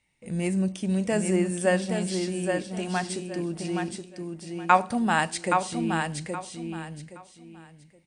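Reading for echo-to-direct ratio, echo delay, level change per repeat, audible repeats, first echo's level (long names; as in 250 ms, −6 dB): −4.5 dB, 821 ms, −12.5 dB, 3, −5.0 dB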